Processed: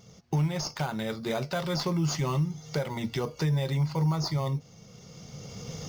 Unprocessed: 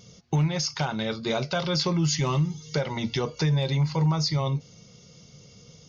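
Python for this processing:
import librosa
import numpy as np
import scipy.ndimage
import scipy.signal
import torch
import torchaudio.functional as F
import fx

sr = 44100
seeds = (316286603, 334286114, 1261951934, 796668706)

p1 = fx.recorder_agc(x, sr, target_db=-22.5, rise_db_per_s=13.0, max_gain_db=30)
p2 = fx.sample_hold(p1, sr, seeds[0], rate_hz=5500.0, jitter_pct=0)
p3 = p1 + (p2 * librosa.db_to_amplitude(-6.0))
y = p3 * librosa.db_to_amplitude(-6.5)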